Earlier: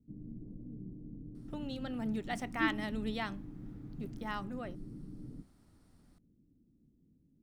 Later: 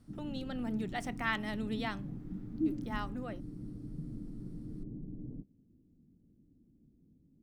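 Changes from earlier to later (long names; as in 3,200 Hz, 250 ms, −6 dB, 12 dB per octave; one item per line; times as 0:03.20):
speech: entry −1.35 s
background +3.0 dB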